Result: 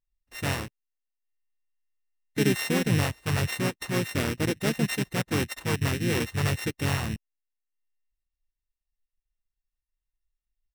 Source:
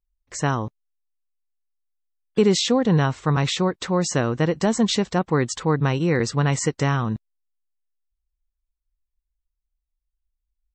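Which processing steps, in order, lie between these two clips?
samples sorted by size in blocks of 16 samples
transient designer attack −4 dB, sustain −8 dB
pitch-shifted copies added −7 semitones −2 dB, −5 semitones −5 dB
level −7.5 dB

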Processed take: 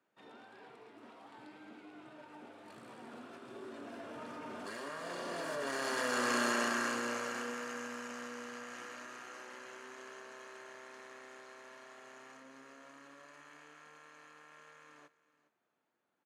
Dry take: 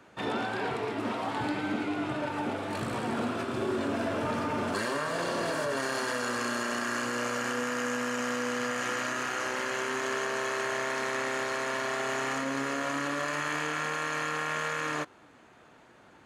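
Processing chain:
source passing by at 0:06.43, 6 m/s, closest 2.4 metres
high-pass filter 180 Hz 12 dB per octave
single-tap delay 413 ms −18 dB

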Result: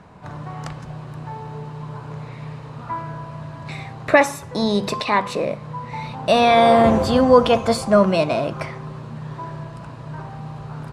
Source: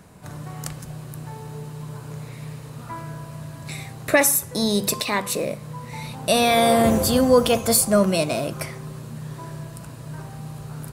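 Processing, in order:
low-pass filter 3,800 Hz 12 dB per octave
parametric band 940 Hz +6.5 dB 1 octave
level +1.5 dB

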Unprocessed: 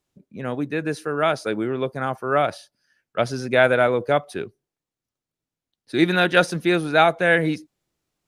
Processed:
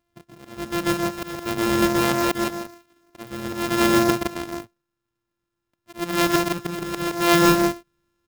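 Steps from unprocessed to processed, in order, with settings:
samples sorted by size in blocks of 128 samples
volume swells 548 ms
loudspeakers that aren't time-aligned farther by 43 metres −6 dB, 57 metres −4 dB
converter with an unsteady clock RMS 0.021 ms
level +4 dB

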